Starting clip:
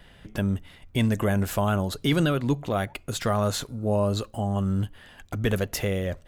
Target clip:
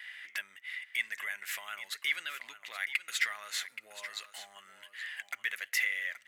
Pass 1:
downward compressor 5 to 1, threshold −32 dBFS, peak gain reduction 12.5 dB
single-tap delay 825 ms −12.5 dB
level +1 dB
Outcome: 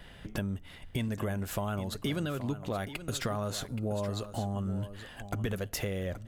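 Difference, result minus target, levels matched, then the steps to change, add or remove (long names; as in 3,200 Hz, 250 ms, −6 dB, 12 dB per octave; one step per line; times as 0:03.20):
2,000 Hz band −11.5 dB
add after downward compressor: high-pass with resonance 2,000 Hz, resonance Q 6.5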